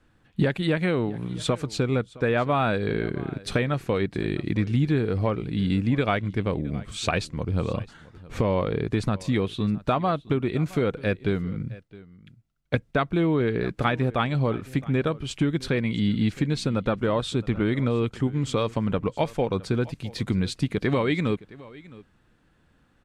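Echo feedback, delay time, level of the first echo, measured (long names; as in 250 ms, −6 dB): repeats not evenly spaced, 665 ms, −20.5 dB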